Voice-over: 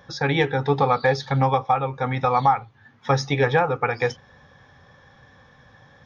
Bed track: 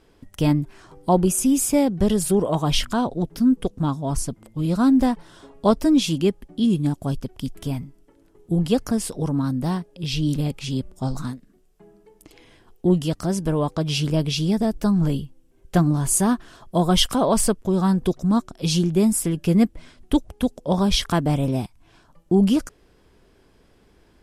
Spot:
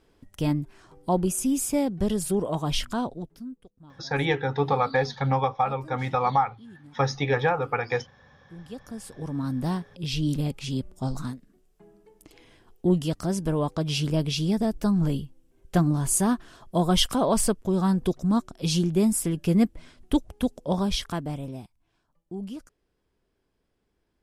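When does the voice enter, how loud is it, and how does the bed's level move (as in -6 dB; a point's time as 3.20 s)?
3.90 s, -4.0 dB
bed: 3.05 s -6 dB
3.67 s -28 dB
8.31 s -28 dB
9.57 s -3.5 dB
20.63 s -3.5 dB
21.93 s -18.5 dB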